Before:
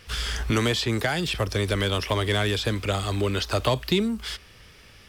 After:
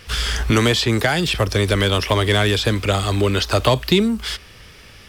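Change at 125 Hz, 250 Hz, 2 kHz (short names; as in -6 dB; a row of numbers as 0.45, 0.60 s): +7.0, +7.0, +7.0 dB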